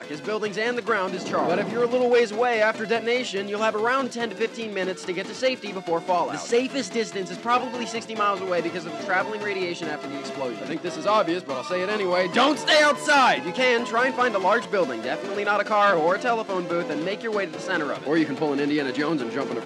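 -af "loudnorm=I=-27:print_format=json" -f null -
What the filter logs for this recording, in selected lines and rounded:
"input_i" : "-24.0",
"input_tp" : "-7.5",
"input_lra" : "5.5",
"input_thresh" : "-34.0",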